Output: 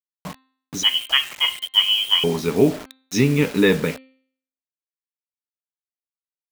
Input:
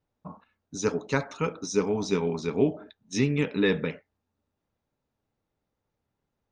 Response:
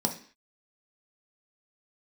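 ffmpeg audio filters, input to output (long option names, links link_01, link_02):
-filter_complex "[0:a]asettb=1/sr,asplit=3[link_01][link_02][link_03];[link_01]atrim=end=0.834[link_04];[link_02]atrim=start=0.83:end=2.24,asetpts=PTS-STARTPTS,afade=type=in:duration=0.004:curve=qsin,afade=type=out:start_time=1.406:duration=0.004:curve=qsin,lowpass=frequency=2900:width_type=q:width=0.5098,lowpass=frequency=2900:width_type=q:width=0.6013,lowpass=frequency=2900:width_type=q:width=0.9,lowpass=frequency=2900:width_type=q:width=2.563,afreqshift=-3400[link_05];[link_03]atrim=start=2.236[link_06];[link_04][link_05]acrossfade=duration=0.004:curve1=hsin:curve2=qsin[link_07];[link_07][link_06]acrossfade=duration=0.004:curve1=qsin:curve2=hsin,acrusher=bits=6:mix=0:aa=0.000001,bandreject=frequency=262.2:width_type=h:width=4,bandreject=frequency=524.4:width_type=h:width=4,bandreject=frequency=786.6:width_type=h:width=4,bandreject=frequency=1048.8:width_type=h:width=4,bandreject=frequency=1311:width_type=h:width=4,bandreject=frequency=1573.2:width_type=h:width=4,bandreject=frequency=1835.4:width_type=h:width=4,bandreject=frequency=2097.6:width_type=h:width=4,bandreject=frequency=2359.8:width_type=h:width=4,bandreject=frequency=2622:width_type=h:width=4,bandreject=frequency=2884.2:width_type=h:width=4,bandreject=frequency=3146.4:width_type=h:width=4,bandreject=frequency=3408.6:width_type=h:width=4,bandreject=frequency=3670.8:width_type=h:width=4,bandreject=frequency=3933:width_type=h:width=4,bandreject=frequency=4195.2:width_type=h:width=4,bandreject=frequency=4457.4:width_type=h:width=4,volume=7.5dB"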